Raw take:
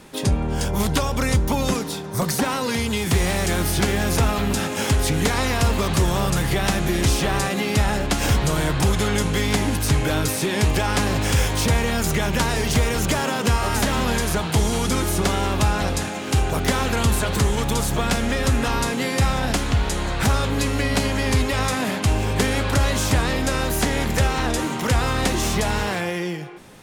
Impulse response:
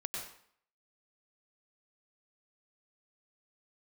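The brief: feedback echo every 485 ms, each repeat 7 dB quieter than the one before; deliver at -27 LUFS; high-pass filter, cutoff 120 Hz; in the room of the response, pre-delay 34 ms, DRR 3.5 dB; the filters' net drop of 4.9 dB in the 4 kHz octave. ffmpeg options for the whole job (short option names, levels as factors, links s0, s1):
-filter_complex "[0:a]highpass=120,equalizer=f=4000:t=o:g=-6.5,aecho=1:1:485|970|1455|1940|2425:0.447|0.201|0.0905|0.0407|0.0183,asplit=2[s0][s1];[1:a]atrim=start_sample=2205,adelay=34[s2];[s1][s2]afir=irnorm=-1:irlink=0,volume=0.596[s3];[s0][s3]amix=inputs=2:normalize=0,volume=0.501"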